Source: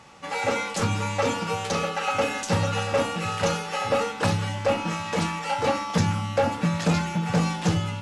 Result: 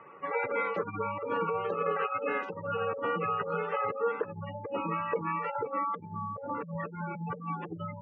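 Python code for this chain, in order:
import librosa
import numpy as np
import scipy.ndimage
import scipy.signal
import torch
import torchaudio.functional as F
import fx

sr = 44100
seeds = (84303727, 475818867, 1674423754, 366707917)

y = fx.spec_gate(x, sr, threshold_db=-15, keep='strong')
y = fx.peak_eq(y, sr, hz=1100.0, db=6.0, octaves=0.41)
y = fx.over_compress(y, sr, threshold_db=-27.0, ratio=-0.5)
y = fx.wow_flutter(y, sr, seeds[0], rate_hz=2.1, depth_cents=23.0)
y = fx.cabinet(y, sr, low_hz=220.0, low_slope=12, high_hz=2200.0, hz=(230.0, 410.0, 800.0), db=(-9, 10, -10))
y = y * 10.0 ** (-2.5 / 20.0)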